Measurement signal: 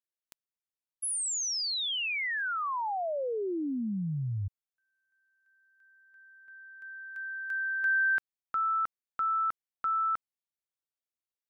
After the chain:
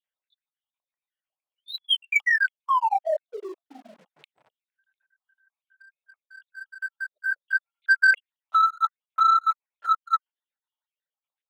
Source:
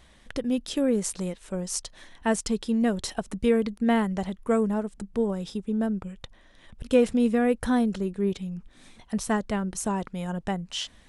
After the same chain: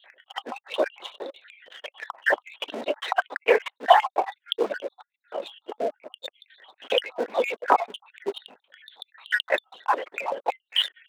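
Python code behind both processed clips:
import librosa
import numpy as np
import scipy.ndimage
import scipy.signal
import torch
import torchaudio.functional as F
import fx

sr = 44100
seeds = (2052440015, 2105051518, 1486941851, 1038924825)

p1 = fx.spec_dropout(x, sr, seeds[0], share_pct=67)
p2 = fx.lpc_vocoder(p1, sr, seeds[1], excitation='whisper', order=10)
p3 = fx.leveller(p2, sr, passes=1)
p4 = fx.level_steps(p3, sr, step_db=23)
p5 = p3 + F.gain(torch.from_numpy(p4), -1.5).numpy()
p6 = scipy.signal.sosfilt(scipy.signal.butter(4, 580.0, 'highpass', fs=sr, output='sos'), p5)
p7 = fx.notch(p6, sr, hz=1200.0, q=14.0)
y = F.gain(torch.from_numpy(p7), 9.0).numpy()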